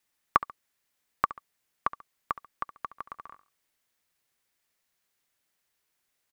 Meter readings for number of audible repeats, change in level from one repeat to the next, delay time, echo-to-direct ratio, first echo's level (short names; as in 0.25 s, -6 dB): 2, -8.5 dB, 69 ms, -15.5 dB, -16.0 dB